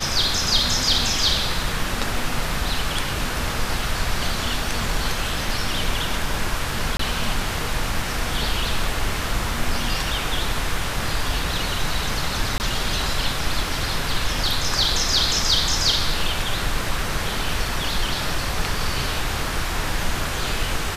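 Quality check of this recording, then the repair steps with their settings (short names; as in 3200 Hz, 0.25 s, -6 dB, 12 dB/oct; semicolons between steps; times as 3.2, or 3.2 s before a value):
6.97–6.99 gap 24 ms
12.58–12.6 gap 19 ms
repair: interpolate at 6.97, 24 ms; interpolate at 12.58, 19 ms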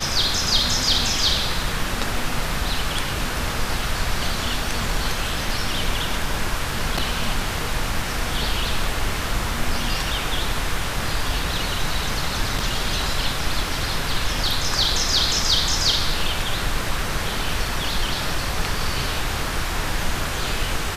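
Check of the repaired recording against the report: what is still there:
none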